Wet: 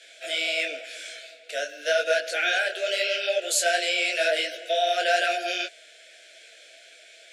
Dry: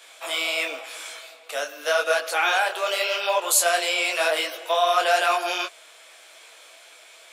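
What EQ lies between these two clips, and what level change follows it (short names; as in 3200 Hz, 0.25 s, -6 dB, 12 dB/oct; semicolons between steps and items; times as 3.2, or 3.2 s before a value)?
BPF 270–6900 Hz; elliptic band-stop 680–1500 Hz, stop band 60 dB; 0.0 dB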